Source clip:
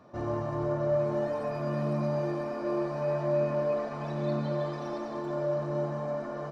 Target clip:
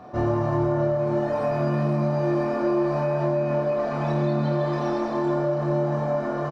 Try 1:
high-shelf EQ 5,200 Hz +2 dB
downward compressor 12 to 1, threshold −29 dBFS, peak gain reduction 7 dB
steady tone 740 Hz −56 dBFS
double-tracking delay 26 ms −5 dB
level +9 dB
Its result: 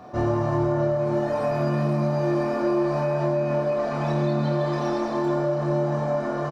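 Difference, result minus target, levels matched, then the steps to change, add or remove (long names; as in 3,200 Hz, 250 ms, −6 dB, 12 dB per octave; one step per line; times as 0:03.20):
8,000 Hz band +5.0 dB
change: high-shelf EQ 5,200 Hz −6 dB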